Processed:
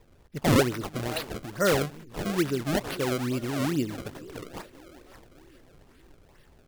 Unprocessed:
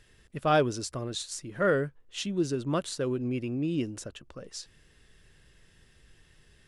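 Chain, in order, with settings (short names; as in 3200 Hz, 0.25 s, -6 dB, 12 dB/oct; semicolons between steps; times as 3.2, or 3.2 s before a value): split-band echo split 300 Hz, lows 0.173 s, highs 0.584 s, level -15.5 dB; decimation with a swept rate 28×, swing 160% 2.3 Hz; record warp 78 rpm, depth 250 cents; gain +2 dB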